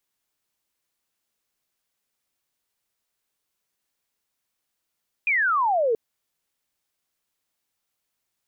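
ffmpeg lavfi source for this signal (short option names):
-f lavfi -i "aevalsrc='0.119*clip(t/0.002,0,1)*clip((0.68-t)/0.002,0,1)*sin(2*PI*2500*0.68/log(430/2500)*(exp(log(430/2500)*t/0.68)-1))':d=0.68:s=44100"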